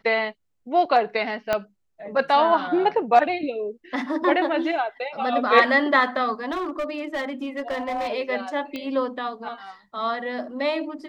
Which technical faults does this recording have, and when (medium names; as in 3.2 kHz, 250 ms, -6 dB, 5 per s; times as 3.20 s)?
1.53 s: pop -9 dBFS
6.51–8.09 s: clipped -23 dBFS
8.76 s: pop -18 dBFS